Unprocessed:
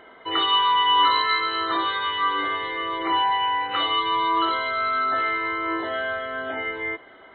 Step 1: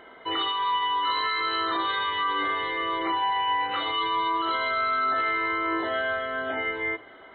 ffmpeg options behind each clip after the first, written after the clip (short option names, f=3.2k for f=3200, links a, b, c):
-af "alimiter=limit=-18.5dB:level=0:latency=1:release=10,bandreject=f=105.9:t=h:w=4,bandreject=f=211.8:t=h:w=4,bandreject=f=317.7:t=h:w=4,bandreject=f=423.6:t=h:w=4,bandreject=f=529.5:t=h:w=4,bandreject=f=635.4:t=h:w=4,bandreject=f=741.3:t=h:w=4,bandreject=f=847.2:t=h:w=4,bandreject=f=953.1:t=h:w=4,bandreject=f=1.059k:t=h:w=4,bandreject=f=1.1649k:t=h:w=4,bandreject=f=1.2708k:t=h:w=4,bandreject=f=1.3767k:t=h:w=4,bandreject=f=1.4826k:t=h:w=4,bandreject=f=1.5885k:t=h:w=4,bandreject=f=1.6944k:t=h:w=4,bandreject=f=1.8003k:t=h:w=4,bandreject=f=1.9062k:t=h:w=4,bandreject=f=2.0121k:t=h:w=4,bandreject=f=2.118k:t=h:w=4,bandreject=f=2.2239k:t=h:w=4,bandreject=f=2.3298k:t=h:w=4,bandreject=f=2.4357k:t=h:w=4,bandreject=f=2.5416k:t=h:w=4,bandreject=f=2.6475k:t=h:w=4,bandreject=f=2.7534k:t=h:w=4,bandreject=f=2.8593k:t=h:w=4,bandreject=f=2.9652k:t=h:w=4,bandreject=f=3.0711k:t=h:w=4"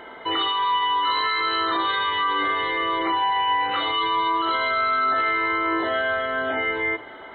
-filter_complex "[0:a]asplit=2[a][b];[b]alimiter=level_in=3dB:limit=-24dB:level=0:latency=1,volume=-3dB,volume=2.5dB[c];[a][c]amix=inputs=2:normalize=0,aeval=exprs='val(0)+0.00355*sin(2*PI*880*n/s)':c=same"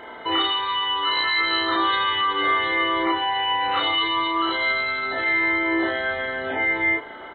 -filter_complex "[0:a]asplit=2[a][b];[b]adelay=33,volume=-2.5dB[c];[a][c]amix=inputs=2:normalize=0"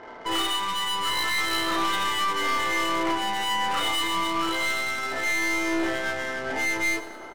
-af "adynamicsmooth=sensitivity=5.5:basefreq=1.1k,aeval=exprs='(tanh(11.2*val(0)+0.5)-tanh(0.5))/11.2':c=same,aecho=1:1:103|206|309|412|515|618:0.178|0.103|0.0598|0.0347|0.0201|0.0117"